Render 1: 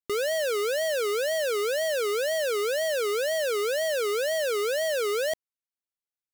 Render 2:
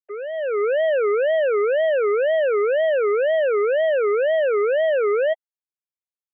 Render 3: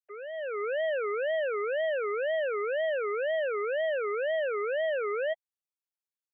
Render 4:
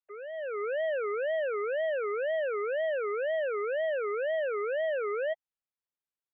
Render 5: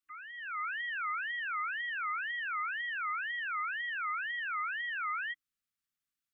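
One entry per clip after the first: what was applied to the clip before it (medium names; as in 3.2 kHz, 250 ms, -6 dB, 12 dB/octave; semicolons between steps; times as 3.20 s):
formants replaced by sine waves; level rider gain up to 12 dB; distance through air 290 m; trim -3.5 dB
high-pass 850 Hz 6 dB/octave; trim -5.5 dB
distance through air 250 m
FFT band-reject 320–1100 Hz; trim +4 dB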